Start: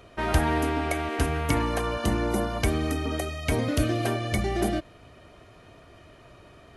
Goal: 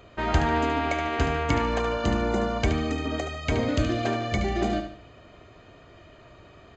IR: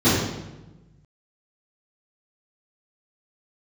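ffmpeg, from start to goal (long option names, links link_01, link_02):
-filter_complex "[0:a]bandreject=frequency=5600:width=6.2,asplit=2[link_01][link_02];[link_02]aecho=0:1:73|146|219|292:0.398|0.147|0.0545|0.0202[link_03];[link_01][link_03]amix=inputs=2:normalize=0,aresample=16000,aresample=44100"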